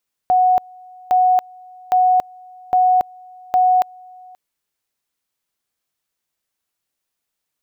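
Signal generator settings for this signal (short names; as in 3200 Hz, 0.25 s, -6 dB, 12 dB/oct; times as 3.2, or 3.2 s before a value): two-level tone 736 Hz -10.5 dBFS, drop 27.5 dB, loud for 0.28 s, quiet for 0.53 s, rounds 5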